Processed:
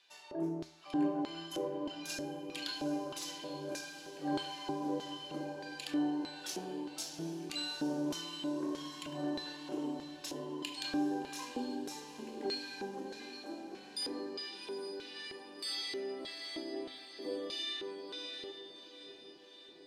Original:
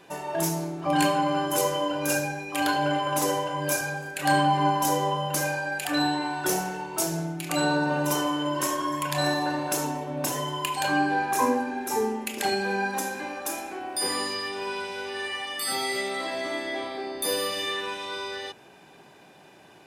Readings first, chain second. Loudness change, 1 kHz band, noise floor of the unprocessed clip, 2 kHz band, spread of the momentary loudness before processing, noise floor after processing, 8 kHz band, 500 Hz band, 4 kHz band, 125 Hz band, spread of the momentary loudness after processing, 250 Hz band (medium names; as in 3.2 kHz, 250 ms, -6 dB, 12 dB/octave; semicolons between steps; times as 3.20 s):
-12.5 dB, -19.5 dB, -52 dBFS, -18.5 dB, 8 LU, -55 dBFS, -17.0 dB, -12.5 dB, -9.0 dB, -17.5 dB, 10 LU, -8.0 dB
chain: LFO band-pass square 1.6 Hz 330–4100 Hz; feedback comb 80 Hz, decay 0.49 s, harmonics all, mix 50%; on a send: echo that smears into a reverb 772 ms, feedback 56%, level -11 dB; on the sum: trim +1.5 dB